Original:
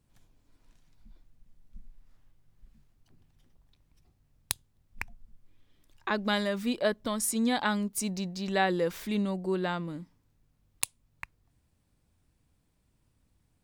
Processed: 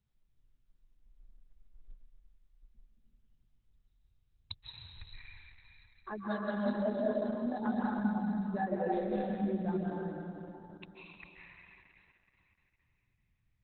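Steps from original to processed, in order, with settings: spectral contrast raised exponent 2.5; digital reverb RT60 3.1 s, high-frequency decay 1×, pre-delay 0.115 s, DRR -5.5 dB; gain -9 dB; Opus 8 kbps 48000 Hz

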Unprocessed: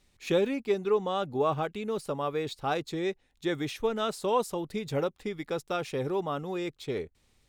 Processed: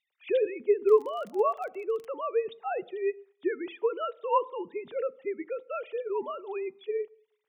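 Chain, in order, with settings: sine-wave speech; on a send at -19 dB: reverb RT60 0.65 s, pre-delay 3 ms; 0.83–2.1 on the sum: crackle 30/s -36 dBFS

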